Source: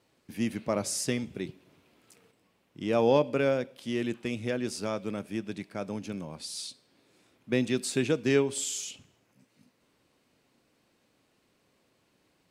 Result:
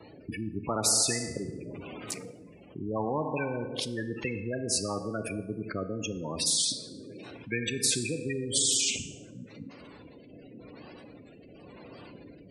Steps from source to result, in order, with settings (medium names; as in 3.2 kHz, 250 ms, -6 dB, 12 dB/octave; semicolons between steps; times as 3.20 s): rotary cabinet horn 0.9 Hz; wow and flutter 110 cents; spectral gate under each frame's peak -15 dB strong; FDN reverb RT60 0.96 s, low-frequency decay 0.85×, high-frequency decay 0.75×, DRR 13.5 dB; spectrum-flattening compressor 4:1